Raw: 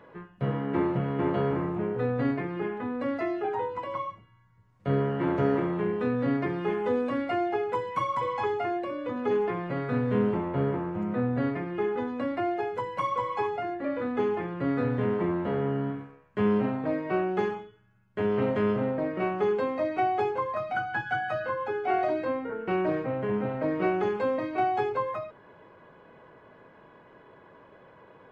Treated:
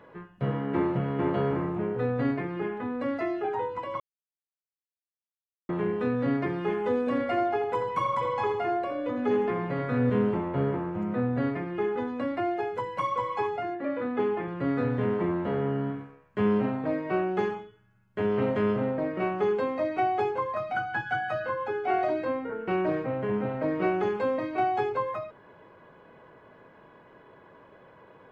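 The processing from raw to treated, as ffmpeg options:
-filter_complex "[0:a]asettb=1/sr,asplit=3[a][b][c];[a]atrim=end=6.994[d];[b]atrim=start=6.99:end=10.1,asetpts=PTS-STARTPTS,afade=t=in:d=0.004:c=qsin,afade=t=out:st=3.106:d=0.004:c=qsin,asplit=2[e][f];[f]adelay=81,lowpass=f=1.7k:p=1,volume=-5.5dB,asplit=2[g][h];[h]adelay=81,lowpass=f=1.7k:p=1,volume=0.5,asplit=2[i][j];[j]adelay=81,lowpass=f=1.7k:p=1,volume=0.5,asplit=2[k][l];[l]adelay=81,lowpass=f=1.7k:p=1,volume=0.5,asplit=2[m][n];[n]adelay=81,lowpass=f=1.7k:p=1,volume=0.5,asplit=2[o][p];[p]adelay=81,lowpass=f=1.7k:p=1,volume=0.5[q];[e][g][i][k][m][o][q]amix=inputs=7:normalize=0,atrim=end_sample=137151[r];[c]atrim=start=10.096[s];[d][r]acrossfade=d=0.004:c1=hsin:c2=qsin[t];[t][s]acrossfade=d=0.004:c1=qsin:c2=hsin,asettb=1/sr,asplit=3[u][v][w];[u]atrim=end=13.754[x];[v]atrim=start=13.75:end=14.48,asetpts=PTS-STARTPTS,afade=t=in:d=0.004:c=qsin,afade=t=out:st=0.726:d=0.004:c=qsin,highpass=120,lowpass=4.1k[y];[w]atrim=start=14.476[z];[x][y]acrossfade=d=0.004:c1=hsin:c2=qsin[aa];[aa][z]acrossfade=d=0.004:c1=qsin:c2=hsin,asplit=3[ab][ac][ad];[ab]atrim=end=4,asetpts=PTS-STARTPTS,afade=t=out:st=3.996:d=0.004:c=hsin[ae];[ac]atrim=start=4:end=5.69,asetpts=PTS-STARTPTS,volume=0[af];[ad]atrim=start=5.69,asetpts=PTS-STARTPTS,afade=t=in:d=0.004:c=hsin[ag];[ae][af][ag]concat=n=3:v=0:a=1"

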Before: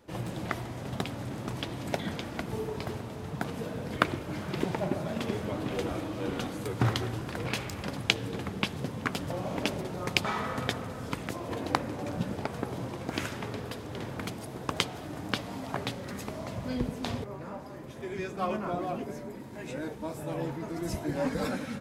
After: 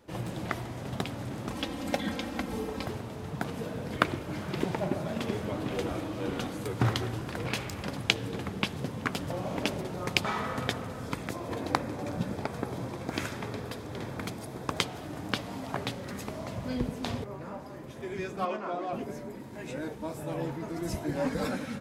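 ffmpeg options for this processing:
-filter_complex "[0:a]asettb=1/sr,asplit=3[a][b][c];[a]atrim=end=1.504[d];[b]atrim=start=1.5:end=2.87,asetpts=PTS-STARTPTS,afade=t=in:d=0.004:c=qsin,afade=t=out:st=1.366:d=0.004:c=qsin,aecho=1:1:3.8:0.78,atrim=end_sample=60417[e];[c]atrim=start=2.866[f];[d][e]acrossfade=d=0.004:c1=hsin:c2=qsin[g];[g][f]acrossfade=d=0.004:c1=qsin:c2=hsin,asettb=1/sr,asplit=3[h][i][j];[h]atrim=end=11.034[k];[i]atrim=start=11.03:end=14.81,asetpts=PTS-STARTPTS,afade=t=in:d=0.004:c=qsin,afade=t=out:st=3.776:d=0.004:c=qsin,bandreject=f=2.9k:w=12[l];[j]atrim=start=14.806[m];[k][l]acrossfade=d=0.004:c1=hsin:c2=qsin[n];[n][m]acrossfade=d=0.004:c1=qsin:c2=hsin,asettb=1/sr,asplit=3[o][p][q];[o]atrim=end=18.454[r];[p]atrim=start=18.45:end=18.93,asetpts=PTS-STARTPTS,afade=t=in:d=0.004:c=qsin,afade=t=out:st=0.476:d=0.004:c=qsin,highpass=310,lowpass=6.2k[s];[q]atrim=start=18.926[t];[r][s]acrossfade=d=0.004:c1=hsin:c2=qsin[u];[u][t]acrossfade=d=0.004:c1=qsin:c2=hsin"

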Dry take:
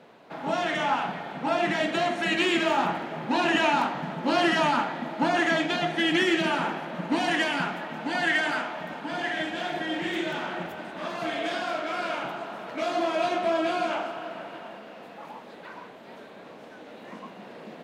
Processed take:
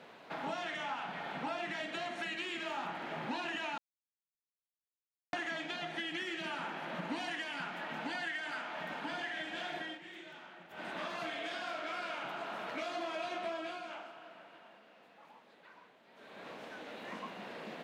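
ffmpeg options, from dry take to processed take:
-filter_complex "[0:a]asplit=7[a][b][c][d][e][f][g];[a]atrim=end=3.78,asetpts=PTS-STARTPTS,afade=t=out:st=3.776:d=0.004:c=hsin[h];[b]atrim=start=3.78:end=5.33,asetpts=PTS-STARTPTS,volume=0[i];[c]atrim=start=5.33:end=9.99,asetpts=PTS-STARTPTS,afade=t=in:d=0.004:c=hsin,afade=t=out:st=4.43:d=0.23:silence=0.105925[j];[d]atrim=start=9.99:end=10.69,asetpts=PTS-STARTPTS,volume=-19.5dB[k];[e]atrim=start=10.69:end=13.82,asetpts=PTS-STARTPTS,afade=t=in:d=0.23:silence=0.105925,afade=t=out:st=2.78:d=0.35:silence=0.177828[l];[f]atrim=start=13.82:end=16.14,asetpts=PTS-STARTPTS,volume=-15dB[m];[g]atrim=start=16.14,asetpts=PTS-STARTPTS,afade=t=in:d=0.35:silence=0.177828[n];[h][i][j][k][l][m][n]concat=n=7:v=0:a=1,tiltshelf=f=1.4k:g=-7,acompressor=threshold=-38dB:ratio=5,highshelf=f=3.4k:g=-10.5,volume=2dB"

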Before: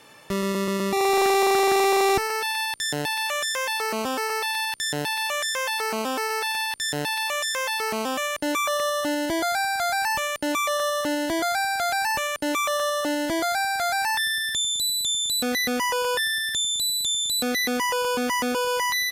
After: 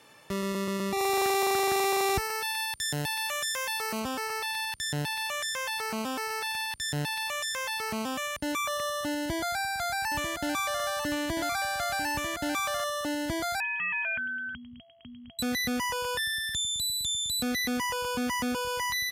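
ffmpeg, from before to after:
-filter_complex "[0:a]asettb=1/sr,asplit=3[a][b][c];[a]atrim=end=0.984[d];[b]atrim=start=0.98:end=4,asetpts=PTS-STARTPTS,afade=t=in:d=0.004:c=qsin,afade=t=out:st=3.016:d=0.004:c=qsin,highshelf=f=9.1k:g=6.5[e];[c]atrim=start=3.996[f];[d][e]acrossfade=d=0.004:c1=hsin:c2=qsin[g];[g][f]acrossfade=d=0.004:c1=qsin:c2=hsin,asettb=1/sr,asplit=3[h][i][j];[h]atrim=end=9.174[k];[i]atrim=start=9.17:end=12.84,asetpts=PTS-STARTPTS,afade=t=in:d=0.004:c=qsin,afade=t=out:st=3.666:d=0.004:c=qsin,aecho=1:1:945:0.422,atrim=end_sample=161847[l];[j]atrim=start=12.836[m];[k][l]acrossfade=d=0.004:c1=hsin:c2=qsin[n];[n][m]acrossfade=d=0.004:c1=qsin:c2=hsin,asettb=1/sr,asplit=3[o][p][q];[o]atrim=end=13.604[r];[p]atrim=start=13.6:end=15.39,asetpts=PTS-STARTPTS,afade=t=in:d=0.004:c=qsin,afade=t=out:st=1.786:d=0.004:c=qsin,lowpass=f=2.8k:t=q:w=0.5098,lowpass=f=2.8k:t=q:w=0.6013,lowpass=f=2.8k:t=q:w=0.9,lowpass=f=2.8k:t=q:w=2.563,afreqshift=-3300[s];[q]atrim=start=15.386[t];[r][s]acrossfade=d=0.004:c1=hsin:c2=qsin[u];[u][t]acrossfade=d=0.004:c1=qsin:c2=hsin,highpass=44,asubboost=boost=5:cutoff=170,volume=-5.5dB"

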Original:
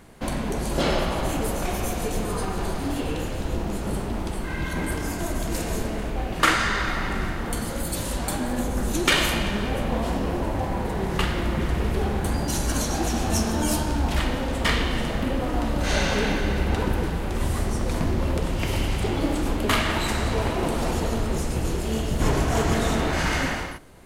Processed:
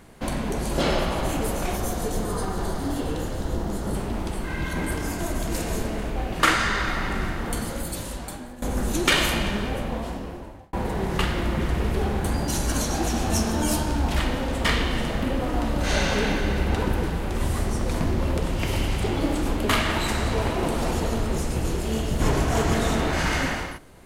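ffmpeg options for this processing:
-filter_complex "[0:a]asettb=1/sr,asplit=3[a][b][c];[a]atrim=end=1.764[d];[b]atrim=start=1.76:end=3.95,asetpts=PTS-STARTPTS,afade=t=in:d=0.004:c=qsin,afade=t=out:st=2.186:d=0.004:c=qsin,equalizer=f=2.5k:t=o:w=0.42:g=-9.5[e];[c]atrim=start=3.946[f];[d][e]acrossfade=d=0.004:c1=hsin:c2=qsin[g];[g][f]acrossfade=d=0.004:c1=qsin:c2=hsin,asplit=3[h][i][j];[h]atrim=end=8.62,asetpts=PTS-STARTPTS,afade=t=out:st=7.58:d=1.04:silence=0.125893[k];[i]atrim=start=8.62:end=10.73,asetpts=PTS-STARTPTS,afade=t=in:d=0.004:c=hsin:silence=0.125893,afade=t=out:st=0.87:d=1.24[l];[j]atrim=start=10.73,asetpts=PTS-STARTPTS,afade=t=in:d=0.004:c=hsin[m];[k][l][m]concat=n=3:v=0:a=1"

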